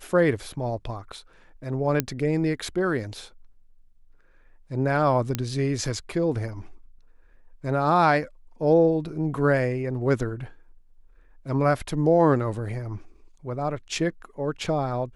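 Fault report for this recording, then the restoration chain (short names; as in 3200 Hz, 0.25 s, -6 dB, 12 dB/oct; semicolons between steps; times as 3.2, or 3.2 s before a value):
2 pop -6 dBFS
5.35 pop -10 dBFS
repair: de-click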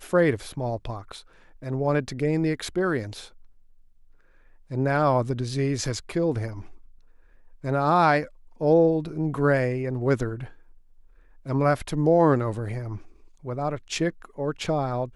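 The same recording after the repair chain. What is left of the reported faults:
2 pop
5.35 pop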